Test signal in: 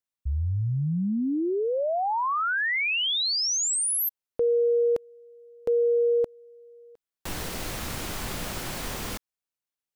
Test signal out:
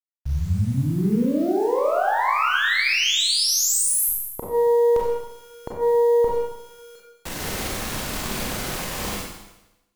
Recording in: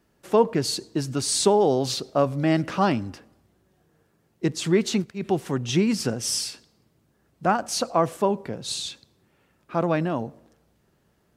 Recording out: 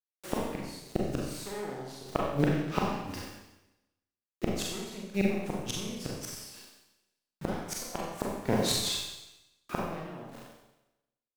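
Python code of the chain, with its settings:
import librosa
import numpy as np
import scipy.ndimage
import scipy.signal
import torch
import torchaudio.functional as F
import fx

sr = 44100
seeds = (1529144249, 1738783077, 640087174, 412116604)

y = fx.cheby_harmonics(x, sr, harmonics=(8,), levels_db=(-15,), full_scale_db=-6.0)
y = fx.quant_dither(y, sr, seeds[0], bits=8, dither='none')
y = fx.gate_flip(y, sr, shuts_db=-14.0, range_db=-25)
y = fx.rev_schroeder(y, sr, rt60_s=0.95, comb_ms=30, drr_db=-3.0)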